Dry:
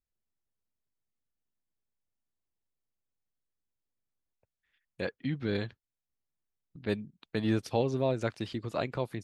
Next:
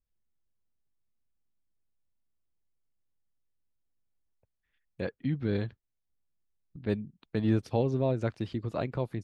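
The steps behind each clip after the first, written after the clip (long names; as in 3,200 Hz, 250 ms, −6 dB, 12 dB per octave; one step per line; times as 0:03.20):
spectral tilt −2 dB per octave
level −2 dB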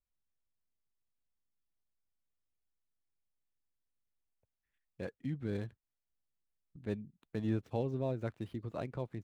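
running median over 9 samples
level −7.5 dB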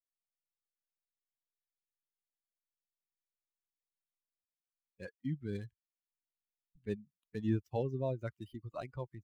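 spectral dynamics exaggerated over time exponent 2
level +3 dB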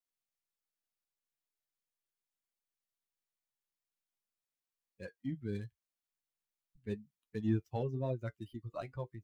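in parallel at −11.5 dB: soft clipping −29.5 dBFS, distortion −13 dB
on the sum: flanger 0.85 Hz, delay 7.6 ms, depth 2.6 ms, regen −48%
level +2 dB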